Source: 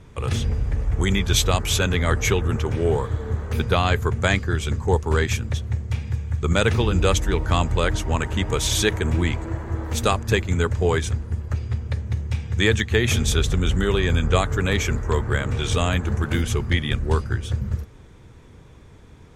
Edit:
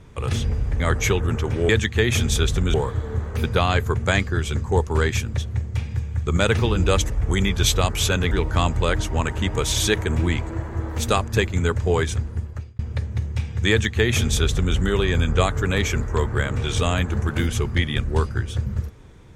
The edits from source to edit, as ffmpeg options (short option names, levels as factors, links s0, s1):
-filter_complex "[0:a]asplit=7[s0][s1][s2][s3][s4][s5][s6];[s0]atrim=end=0.802[s7];[s1]atrim=start=2.008:end=2.902[s8];[s2]atrim=start=12.648:end=13.702[s9];[s3]atrim=start=2.898:end=7.262[s10];[s4]atrim=start=0.798:end=2.012[s11];[s5]atrim=start=7.258:end=11.74,asetpts=PTS-STARTPTS,afade=t=out:st=4.042:d=0.44[s12];[s6]atrim=start=11.74,asetpts=PTS-STARTPTS,afade=t=in:d=0.004:c=hsin[s13];[s7][s8]acrossfade=d=0.004:c1=hsin:c2=hsin[s14];[s14][s9]acrossfade=d=0.004:c1=hsin:c2=hsin[s15];[s15][s10]acrossfade=d=0.004:c1=hsin:c2=hsin[s16];[s16][s11]acrossfade=d=0.004:c1=hsin:c2=hsin[s17];[s12][s13]concat=n=2:v=0:a=1[s18];[s17][s18]acrossfade=d=0.004:c1=hsin:c2=hsin"